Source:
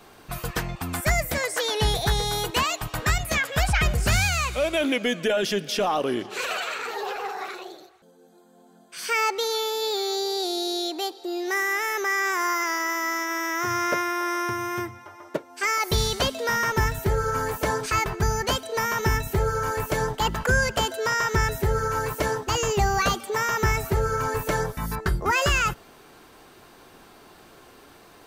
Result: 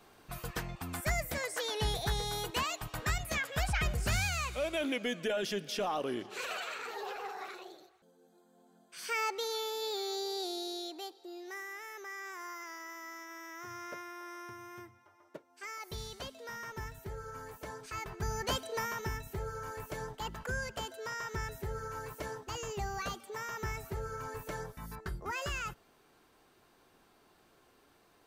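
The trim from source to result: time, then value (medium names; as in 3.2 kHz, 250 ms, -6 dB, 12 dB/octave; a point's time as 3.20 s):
10.42 s -10 dB
11.74 s -19.5 dB
17.81 s -19.5 dB
18.62 s -7 dB
19.14 s -15.5 dB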